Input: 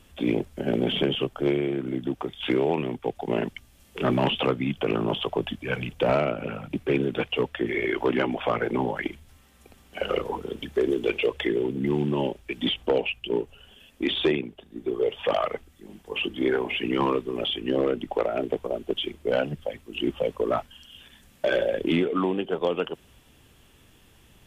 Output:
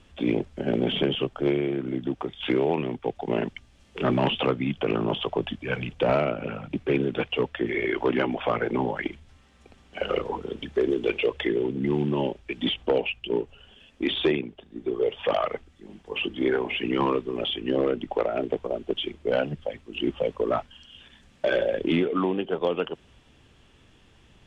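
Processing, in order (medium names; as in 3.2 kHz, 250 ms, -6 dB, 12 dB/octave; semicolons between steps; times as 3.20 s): Bessel low-pass 5.6 kHz, order 4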